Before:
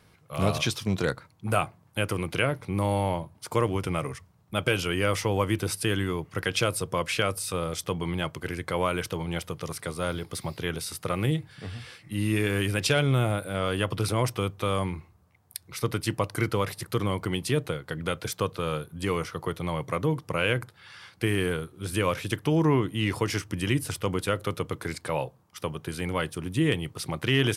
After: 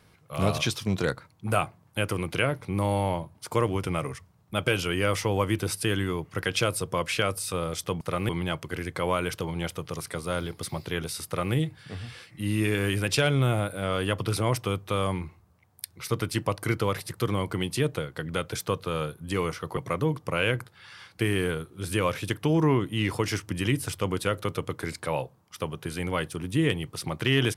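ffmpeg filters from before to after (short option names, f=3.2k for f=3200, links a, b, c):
-filter_complex "[0:a]asplit=4[a][b][c][d];[a]atrim=end=8.012[e];[b]atrim=start=10.978:end=11.262[f];[c]atrim=start=8.008:end=19.492[g];[d]atrim=start=19.788[h];[e][f]acrossfade=d=0.004:c1=hsin:c2=hsin[i];[i][g]acrossfade=d=0.004:c1=hsin:c2=hsin[j];[j][h]acrossfade=d=0.004:c1=hsin:c2=hsin"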